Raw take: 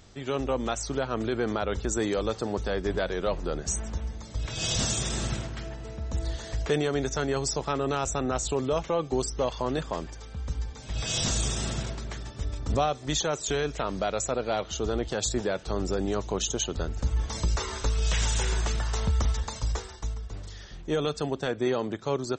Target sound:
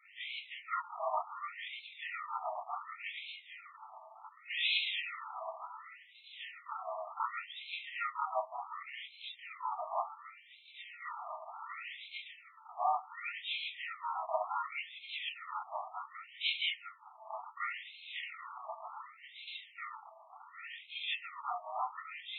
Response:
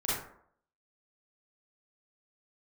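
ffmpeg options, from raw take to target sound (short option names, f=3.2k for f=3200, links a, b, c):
-filter_complex "[0:a]asplit=2[a][b];[b]asoftclip=type=tanh:threshold=-24.5dB,volume=-3dB[c];[a][c]amix=inputs=2:normalize=0[d];[1:a]atrim=start_sample=2205,afade=t=out:st=0.16:d=0.01,atrim=end_sample=7497,asetrate=66150,aresample=44100[e];[d][e]afir=irnorm=-1:irlink=0,asplit=3[f][g][h];[g]asetrate=33038,aresample=44100,atempo=1.33484,volume=-1dB[i];[h]asetrate=66075,aresample=44100,atempo=0.66742,volume=-11dB[j];[f][i][j]amix=inputs=3:normalize=0,acrossover=split=130|3000[k][l][m];[l]acompressor=threshold=-17dB:ratio=6[n];[k][n][m]amix=inputs=3:normalize=0,asuperstop=centerf=1600:order=20:qfactor=4.5,areverse,acompressor=threshold=-20dB:ratio=4,areverse,afftfilt=real='re*between(b*sr/1024,860*pow(3000/860,0.5+0.5*sin(2*PI*0.68*pts/sr))/1.41,860*pow(3000/860,0.5+0.5*sin(2*PI*0.68*pts/sr))*1.41)':imag='im*between(b*sr/1024,860*pow(3000/860,0.5+0.5*sin(2*PI*0.68*pts/sr))/1.41,860*pow(3000/860,0.5+0.5*sin(2*PI*0.68*pts/sr))*1.41)':win_size=1024:overlap=0.75,volume=-2dB"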